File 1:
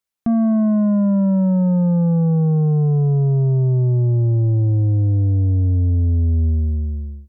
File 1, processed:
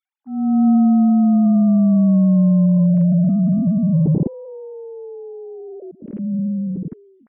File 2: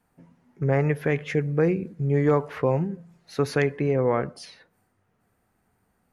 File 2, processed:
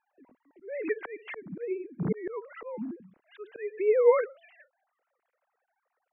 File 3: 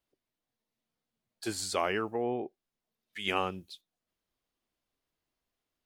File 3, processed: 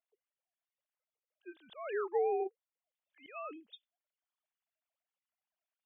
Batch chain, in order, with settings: formants replaced by sine waves; slow attack 433 ms

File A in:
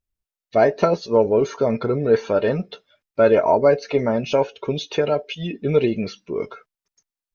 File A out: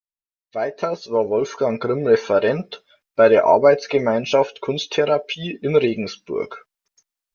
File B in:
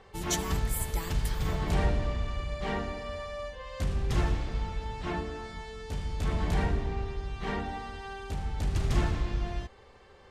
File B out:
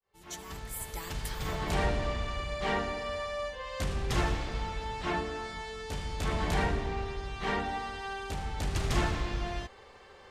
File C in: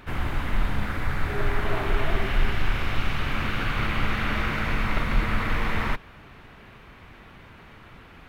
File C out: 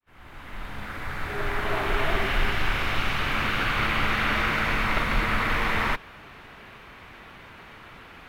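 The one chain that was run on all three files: fade-in on the opening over 2.09 s; bass shelf 310 Hz -8.5 dB; trim +4.5 dB

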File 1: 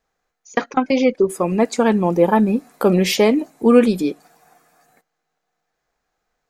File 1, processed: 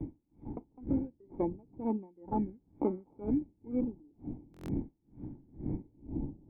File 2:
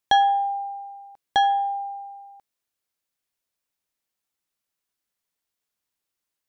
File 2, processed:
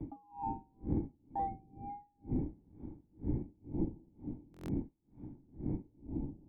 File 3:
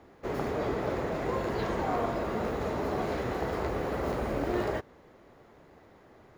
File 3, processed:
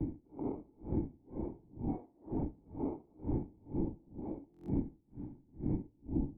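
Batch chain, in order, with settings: wind noise 140 Hz -19 dBFS; gain riding within 5 dB 0.5 s; vibrato 1.1 Hz 48 cents; decimation with a swept rate 20×, swing 60% 0.43 Hz; added noise blue -32 dBFS; cascade formant filter u; compression 5:1, threshold -27 dBFS; bass shelf 340 Hz -5 dB; buffer glitch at 4.52 s, samples 1024, times 6; logarithmic tremolo 2.1 Hz, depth 32 dB; trim +4 dB

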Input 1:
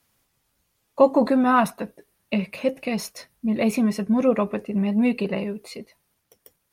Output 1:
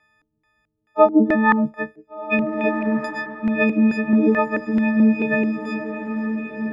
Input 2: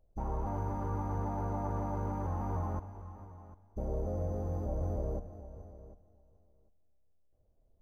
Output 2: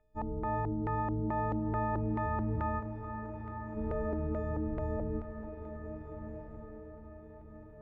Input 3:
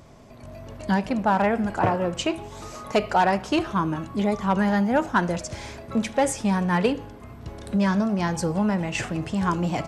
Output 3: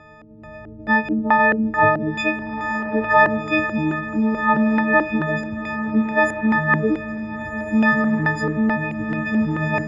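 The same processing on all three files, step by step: partials quantised in pitch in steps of 6 st; LFO low-pass square 2.3 Hz 320–1900 Hz; echo that smears into a reverb 1514 ms, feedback 43%, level -9 dB

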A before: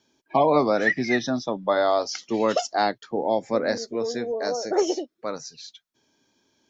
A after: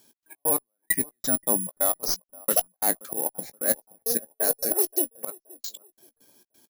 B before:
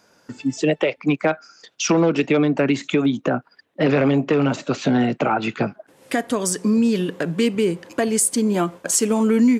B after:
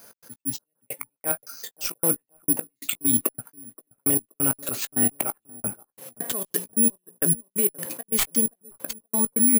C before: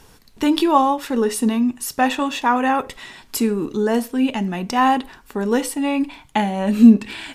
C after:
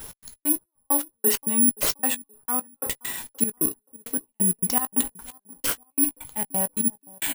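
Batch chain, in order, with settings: tracing distortion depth 0.032 ms; slow attack 168 ms; reverse; compression 6:1, threshold -26 dBFS; reverse; trance gate "x.x.x...x..x.x" 133 bpm -60 dB; in parallel at -10.5 dB: one-sided clip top -34.5 dBFS; on the sum: doubling 17 ms -13 dB; bucket-brigade echo 525 ms, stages 4096, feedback 31%, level -23 dB; careless resampling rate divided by 4×, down none, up zero stuff

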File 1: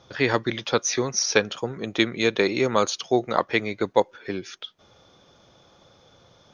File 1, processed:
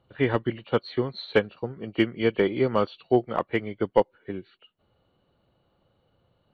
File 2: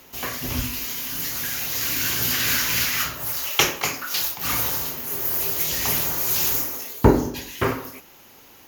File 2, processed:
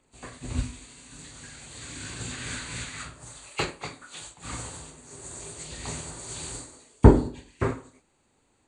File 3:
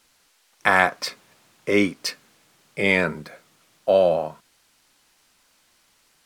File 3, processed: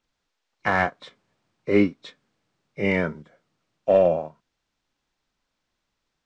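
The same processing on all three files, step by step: knee-point frequency compression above 2.1 kHz 1.5:1; in parallel at -8 dB: wavefolder -10.5 dBFS; on the sum: tilt EQ -2 dB/octave; upward expansion 1.5:1, over -37 dBFS; trim -4 dB

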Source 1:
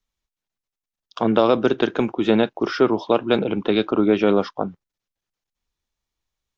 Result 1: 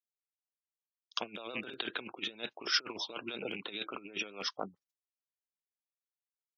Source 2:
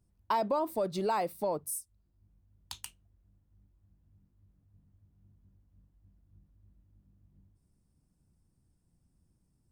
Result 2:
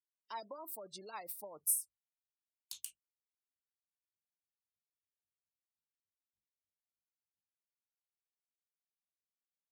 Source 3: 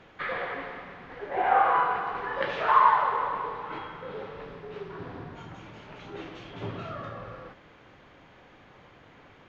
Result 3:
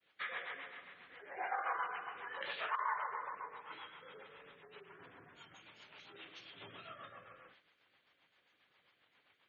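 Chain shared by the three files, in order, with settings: rattle on loud lows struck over -26 dBFS, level -21 dBFS; expander -47 dBFS; spectral gate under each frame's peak -30 dB strong; rotary cabinet horn 7.5 Hz; bass shelf 200 Hz +8.5 dB; compressor with a negative ratio -22 dBFS, ratio -0.5; differentiator; trim +5 dB

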